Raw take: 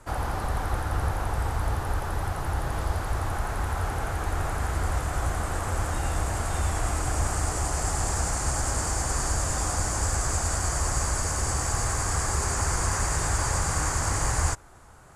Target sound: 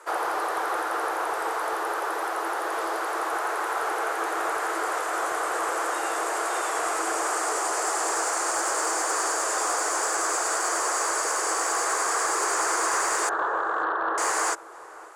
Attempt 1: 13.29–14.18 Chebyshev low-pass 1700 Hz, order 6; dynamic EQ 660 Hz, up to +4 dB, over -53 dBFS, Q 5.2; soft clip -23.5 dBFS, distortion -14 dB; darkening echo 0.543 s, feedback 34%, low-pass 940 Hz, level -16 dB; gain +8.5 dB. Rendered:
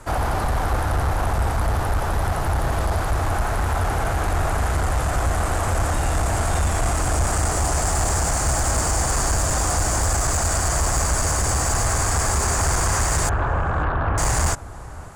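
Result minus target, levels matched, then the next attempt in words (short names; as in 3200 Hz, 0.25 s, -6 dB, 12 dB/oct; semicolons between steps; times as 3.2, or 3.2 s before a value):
250 Hz band +4.5 dB
13.29–14.18 Chebyshev low-pass 1700 Hz, order 6; dynamic EQ 660 Hz, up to +4 dB, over -53 dBFS, Q 5.2; rippled Chebyshev high-pass 320 Hz, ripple 6 dB; soft clip -23.5 dBFS, distortion -25 dB; darkening echo 0.543 s, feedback 34%, low-pass 940 Hz, level -16 dB; gain +8.5 dB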